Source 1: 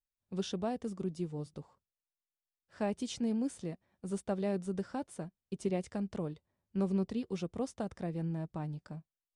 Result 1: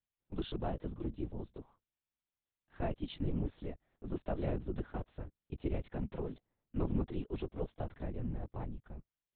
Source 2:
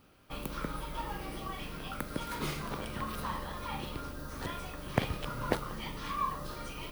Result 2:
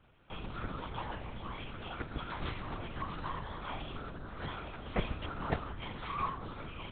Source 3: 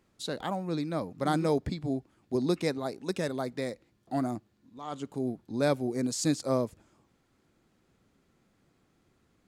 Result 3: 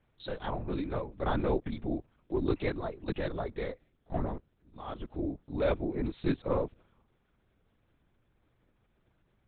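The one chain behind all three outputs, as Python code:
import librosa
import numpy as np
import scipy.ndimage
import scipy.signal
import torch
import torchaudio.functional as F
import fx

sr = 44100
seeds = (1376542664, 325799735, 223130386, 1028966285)

y = fx.lpc_vocoder(x, sr, seeds[0], excitation='whisper', order=8)
y = y * 10.0 ** (-2.0 / 20.0)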